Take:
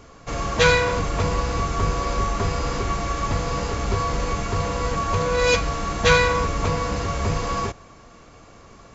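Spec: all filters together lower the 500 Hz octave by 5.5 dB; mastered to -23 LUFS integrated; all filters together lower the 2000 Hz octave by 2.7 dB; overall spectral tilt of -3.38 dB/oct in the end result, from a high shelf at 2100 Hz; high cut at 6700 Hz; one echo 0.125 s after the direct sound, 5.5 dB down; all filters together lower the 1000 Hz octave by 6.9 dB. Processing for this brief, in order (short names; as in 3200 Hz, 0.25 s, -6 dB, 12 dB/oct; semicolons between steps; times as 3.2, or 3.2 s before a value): LPF 6700 Hz; bell 500 Hz -4.5 dB; bell 1000 Hz -7.5 dB; bell 2000 Hz -6 dB; high shelf 2100 Hz +8.5 dB; echo 0.125 s -5.5 dB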